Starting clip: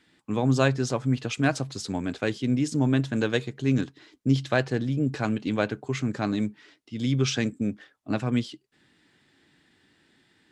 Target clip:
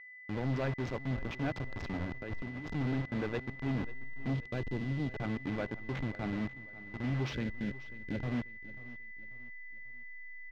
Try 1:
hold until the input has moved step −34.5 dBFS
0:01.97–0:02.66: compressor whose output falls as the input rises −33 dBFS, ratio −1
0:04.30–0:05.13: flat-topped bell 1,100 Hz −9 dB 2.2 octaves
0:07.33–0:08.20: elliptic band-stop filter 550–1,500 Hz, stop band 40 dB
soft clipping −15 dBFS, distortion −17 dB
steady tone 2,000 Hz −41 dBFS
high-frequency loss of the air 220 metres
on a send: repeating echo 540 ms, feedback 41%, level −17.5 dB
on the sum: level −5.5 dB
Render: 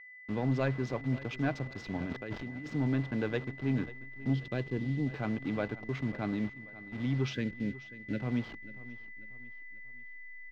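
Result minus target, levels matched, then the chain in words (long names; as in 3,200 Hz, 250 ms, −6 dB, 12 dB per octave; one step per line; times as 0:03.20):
hold until the input has moved: distortion −8 dB; soft clipping: distortion −7 dB
hold until the input has moved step −26 dBFS
0:01.97–0:02.66: compressor whose output falls as the input rises −33 dBFS, ratio −1
0:04.30–0:05.13: flat-topped bell 1,100 Hz −9 dB 2.2 octaves
0:07.33–0:08.20: elliptic band-stop filter 550–1,500 Hz, stop band 40 dB
soft clipping −22 dBFS, distortion −10 dB
steady tone 2,000 Hz −41 dBFS
high-frequency loss of the air 220 metres
on a send: repeating echo 540 ms, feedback 41%, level −17.5 dB
on the sum: level −5.5 dB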